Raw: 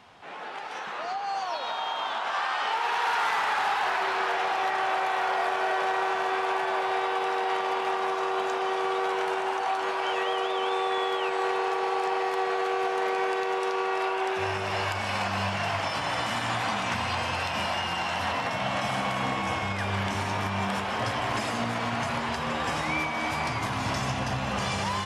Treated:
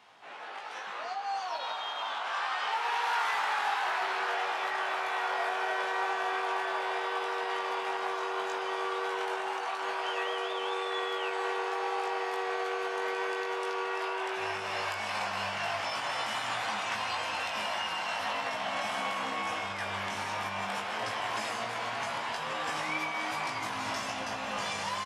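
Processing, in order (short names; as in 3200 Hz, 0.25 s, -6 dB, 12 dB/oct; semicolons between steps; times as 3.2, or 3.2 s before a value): HPF 540 Hz 6 dB/oct; doubler 19 ms -4 dB; gain -4.5 dB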